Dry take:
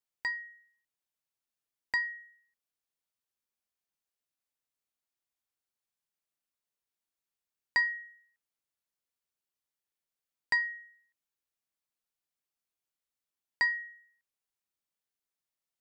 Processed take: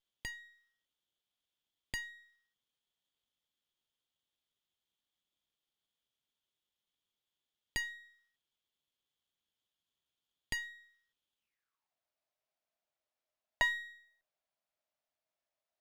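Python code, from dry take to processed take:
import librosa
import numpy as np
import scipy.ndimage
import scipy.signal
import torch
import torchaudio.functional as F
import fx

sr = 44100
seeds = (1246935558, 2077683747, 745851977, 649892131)

y = fx.dynamic_eq(x, sr, hz=3500.0, q=0.94, threshold_db=-41.0, ratio=4.0, max_db=-3)
y = fx.filter_sweep_highpass(y, sr, from_hz=3300.0, to_hz=630.0, start_s=11.37, end_s=11.95, q=7.8)
y = fx.running_max(y, sr, window=5)
y = F.gain(torch.from_numpy(y), -2.5).numpy()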